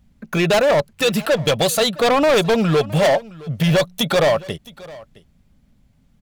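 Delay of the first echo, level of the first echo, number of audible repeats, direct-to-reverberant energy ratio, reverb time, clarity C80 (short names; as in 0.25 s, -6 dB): 0.665 s, -21.0 dB, 1, none, none, none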